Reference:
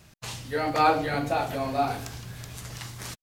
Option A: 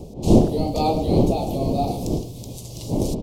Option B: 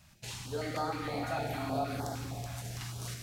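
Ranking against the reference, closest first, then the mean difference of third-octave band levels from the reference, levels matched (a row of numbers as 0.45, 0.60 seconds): B, A; 5.5, 9.0 decibels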